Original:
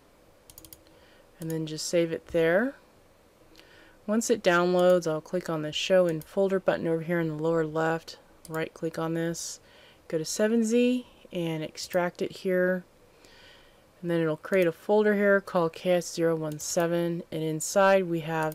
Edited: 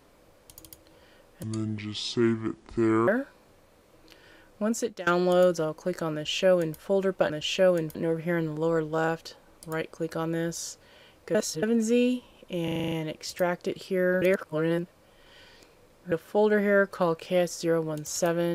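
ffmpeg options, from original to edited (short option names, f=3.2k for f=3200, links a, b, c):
-filter_complex "[0:a]asplit=17[a][b][c][d][e][f][g][h][i][j][k][l][m][n][o][p][q];[a]atrim=end=1.434[r];[b]atrim=start=1.43:end=2.55,asetpts=PTS-STARTPTS,asetrate=29988,aresample=44100,atrim=end_sample=72635,asetpts=PTS-STARTPTS[s];[c]atrim=start=2.546:end=4.54,asetpts=PTS-STARTPTS,afade=t=out:st=1.564:d=0.43:silence=0.0707946[t];[d]atrim=start=4.54:end=6.772,asetpts=PTS-STARTPTS,afade=t=in:d=0.004:c=hsin:silence=0.0707946[u];[e]atrim=start=5.608:end=6.262[v];[f]atrim=start=6.768:end=10.172[w];[g]atrim=start=10.168:end=10.452,asetpts=PTS-STARTPTS,areverse[x];[h]atrim=start=10.448:end=11.502[y];[i]atrim=start=11.458:end=11.502[z];[j]atrim=start=11.458:end=11.502[aa];[k]atrim=start=11.458:end=11.502[ab];[l]atrim=start=11.458:end=11.502[ac];[m]atrim=start=11.458:end=11.502[ad];[n]atrim=start=11.458:end=11.502[ae];[o]atrim=start=11.458:end=12.762[af];[p]atrim=start=12.758:end=14.662,asetpts=PTS-STARTPTS,areverse[ag];[q]atrim=start=14.658[ah];[r][s]acrossfade=d=0.004:c1=hsin:c2=hsin[ai];[t][u]concat=n=2:v=0:a=1[aj];[ai][aj]acrossfade=d=0.004:c1=hsin:c2=hsin[ak];[ak][v]acrossfade=d=0.004:c1=hsin:c2=hsin[al];[al][w]acrossfade=d=0.004:c1=hsin:c2=hsin[am];[am][x]acrossfade=d=0.004:c1=hsin:c2=hsin[an];[an][y]acrossfade=d=0.004:c1=hsin:c2=hsin[ao];[ao][z]acrossfade=d=0.004:c1=hsin:c2=hsin[ap];[ap][aa]acrossfade=d=0.004:c1=hsin:c2=hsin[aq];[aq][ab]acrossfade=d=0.004:c1=hsin:c2=hsin[ar];[ar][ac]acrossfade=d=0.004:c1=hsin:c2=hsin[as];[as][ad]acrossfade=d=0.004:c1=hsin:c2=hsin[at];[at][ae]acrossfade=d=0.004:c1=hsin:c2=hsin[au];[au][af]acrossfade=d=0.004:c1=hsin:c2=hsin[av];[av][ag]acrossfade=d=0.004:c1=hsin:c2=hsin[aw];[aw][ah]acrossfade=d=0.004:c1=hsin:c2=hsin"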